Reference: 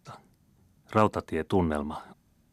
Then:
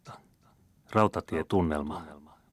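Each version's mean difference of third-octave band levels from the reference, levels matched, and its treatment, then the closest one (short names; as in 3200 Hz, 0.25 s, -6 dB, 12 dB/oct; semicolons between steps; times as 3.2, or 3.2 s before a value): 1.0 dB: echo 0.363 s -18 dB; gain -1 dB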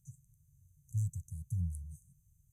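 21.0 dB: brick-wall FIR band-stop 160–5900 Hz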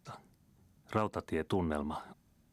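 3.5 dB: compressor 4:1, threshold -26 dBFS, peak gain reduction 9.5 dB; gain -2.5 dB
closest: first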